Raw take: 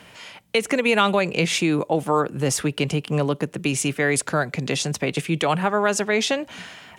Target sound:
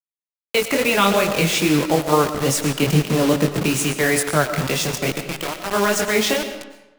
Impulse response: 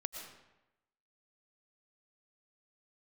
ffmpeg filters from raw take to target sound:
-filter_complex "[0:a]asettb=1/sr,asplit=3[link_01][link_02][link_03];[link_01]atrim=end=2.824[link_04];[link_02]atrim=start=2.82:end=3.66,asetpts=PTS-STARTPTS,afade=type=in:duration=0.004:curve=qsin,afade=type=out:start_time=0.836:duration=0.004:curve=qsin,lowshelf=frequency=470:gain=6[link_05];[link_03]atrim=start=3.656[link_06];[link_04][link_05]acrossfade=duration=0.004:curve1=hsin:curve2=qsin[link_07];[link_07][link_06]acrossfade=duration=0.004:curve1=qsin:curve2=hsin,asplit=3[link_08][link_09][link_10];[link_08]afade=type=out:start_time=5.11:duration=0.02[link_11];[link_09]acompressor=threshold=-26dB:ratio=20,afade=type=in:start_time=5.11:duration=0.02,afade=type=out:start_time=5.69:duration=0.02[link_12];[link_10]afade=type=in:start_time=5.69:duration=0.02[link_13];[link_11][link_12][link_13]amix=inputs=3:normalize=0,flanger=delay=19.5:depth=5.6:speed=2.3,acrusher=bits=4:mix=0:aa=0.000001,asplit=2[link_14][link_15];[1:a]atrim=start_sample=2205[link_16];[link_15][link_16]afir=irnorm=-1:irlink=0,volume=4.5dB[link_17];[link_14][link_17]amix=inputs=2:normalize=0,volume=-2.5dB"

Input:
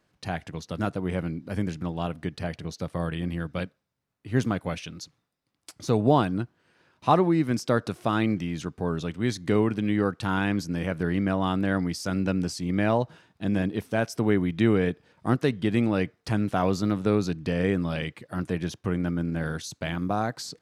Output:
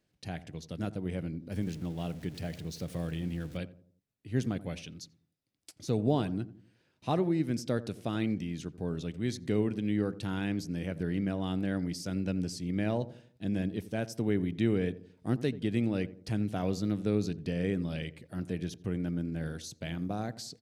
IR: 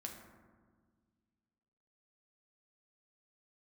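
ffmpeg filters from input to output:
-filter_complex "[0:a]asettb=1/sr,asplit=3[link_01][link_02][link_03];[link_01]atrim=end=1.524[link_04];[link_02]atrim=start=1.52:end=3.57,asetpts=PTS-STARTPTS,afade=type=in:duration=0.004:curve=qsin,afade=type=out:start_time=2.046:duration=0.004:curve=qsin,aeval=exprs='val(0)+0.5*0.0112*sgn(val(0))':channel_layout=same[link_05];[link_03]atrim=start=3.566[link_06];[link_04][link_05]acrossfade=duration=0.004:curve1=hsin:curve2=qsin[link_07];[link_07][link_06]acrossfade=duration=0.004:curve1=qsin:curve2=hsin,equalizer=frequency=1100:width_type=o:width=1.2:gain=-11,asplit=2[link_08][link_09];[link_09]adelay=86,lowpass=frequency=820:poles=1,volume=-14.5dB,asplit=2[link_10][link_11];[link_11]adelay=86,lowpass=frequency=820:poles=1,volume=0.46,asplit=2[link_12][link_13];[link_13]adelay=86,lowpass=frequency=820:poles=1,volume=0.46,asplit=2[link_14][link_15];[link_15]adelay=86,lowpass=frequency=820:poles=1,volume=0.46[link_16];[link_08][link_10][link_12][link_14][link_16]amix=inputs=5:normalize=0,volume=-5.5dB"

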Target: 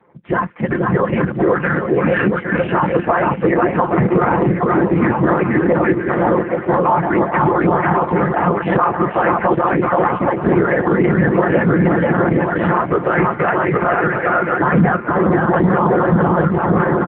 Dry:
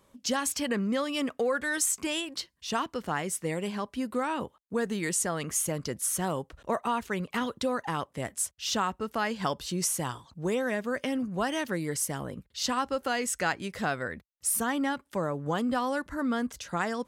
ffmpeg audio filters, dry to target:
ffmpeg -i in.wav -filter_complex "[0:a]asettb=1/sr,asplit=3[link_01][link_02][link_03];[link_01]atrim=end=15.604[link_04];[link_02]atrim=start=15.6:end=16.12,asetpts=PTS-STARTPTS,afade=type=in:duration=0.004:curve=qsin,afade=type=out:start_time=0.516:duration=0.004:curve=qsin,aeval=exprs='val(0)+0.00794*(sin(2*PI*60*n/s)+sin(2*PI*2*60*n/s)/2+sin(2*PI*3*60*n/s)/3+sin(2*PI*4*60*n/s)/4+sin(2*PI*5*60*n/s)/5)':channel_layout=same[link_05];[link_03]atrim=start=16.116[link_06];[link_04][link_05]acrossfade=duration=0.004:curve1=hsin:curve2=qsin[link_07];[link_07][link_06]acrossfade=duration=0.004:curve1=qsin:curve2=hsin,dynaudnorm=framelen=460:gausssize=7:maxgain=8dB,highpass=frequency=230:width_type=q:width=0.5412,highpass=frequency=230:width_type=q:width=1.307,lowpass=frequency=2100:width_type=q:width=0.5176,lowpass=frequency=2100:width_type=q:width=0.7071,lowpass=frequency=2100:width_type=q:width=1.932,afreqshift=-96,afftfilt=real='hypot(re,im)*cos(2*PI*random(0))':imag='hypot(re,im)*sin(2*PI*random(1))':win_size=512:overlap=0.75,aecho=1:1:5.7:0.52,aecho=1:1:480|816|1051|1216|1331:0.631|0.398|0.251|0.158|0.1,alimiter=level_in=22.5dB:limit=-1dB:release=50:level=0:latency=1,volume=-3dB" -ar 8000 -c:a libopencore_amrnb -b:a 5900 out.amr

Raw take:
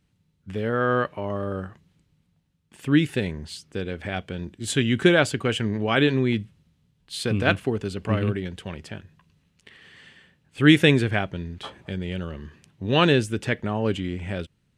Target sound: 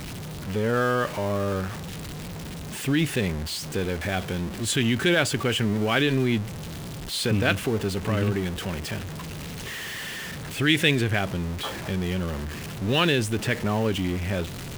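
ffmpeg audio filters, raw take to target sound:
ffmpeg -i in.wav -filter_complex "[0:a]aeval=exprs='val(0)+0.5*0.0335*sgn(val(0))':channel_layout=same,acrossover=split=1700[link_01][link_02];[link_01]alimiter=limit=-15.5dB:level=0:latency=1[link_03];[link_03][link_02]amix=inputs=2:normalize=0" out.wav

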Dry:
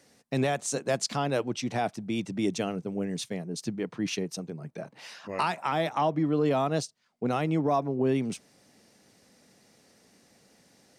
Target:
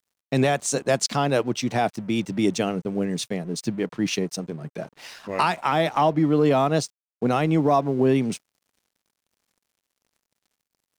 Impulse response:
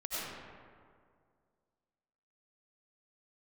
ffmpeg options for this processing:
-af "aeval=exprs='sgn(val(0))*max(abs(val(0))-0.002,0)':channel_layout=same,volume=6.5dB"

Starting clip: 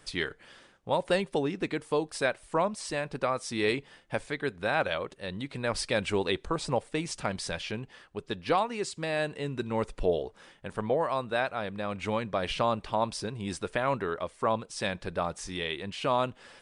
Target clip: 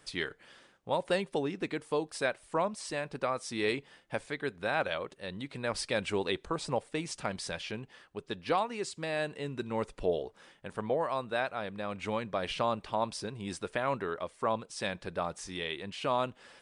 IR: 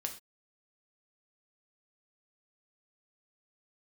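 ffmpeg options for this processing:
-af "lowshelf=frequency=66:gain=-9,volume=-3dB"

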